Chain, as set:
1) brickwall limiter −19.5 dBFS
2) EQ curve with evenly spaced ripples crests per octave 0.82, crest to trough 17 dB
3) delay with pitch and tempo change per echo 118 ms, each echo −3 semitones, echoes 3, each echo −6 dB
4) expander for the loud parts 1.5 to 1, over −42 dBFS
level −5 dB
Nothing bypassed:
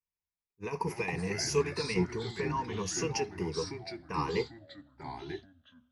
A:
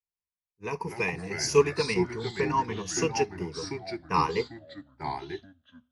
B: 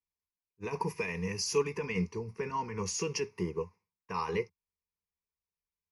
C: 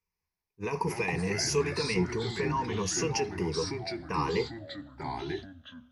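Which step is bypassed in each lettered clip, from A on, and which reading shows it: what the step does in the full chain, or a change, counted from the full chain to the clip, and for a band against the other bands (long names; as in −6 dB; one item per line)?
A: 1, average gain reduction 3.5 dB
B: 3, change in momentary loudness spread −4 LU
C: 4, change in crest factor −3.0 dB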